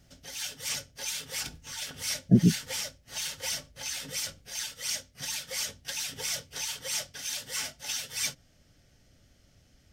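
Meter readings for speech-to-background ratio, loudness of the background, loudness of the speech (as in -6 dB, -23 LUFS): 9.5 dB, -33.5 LUFS, -24.0 LUFS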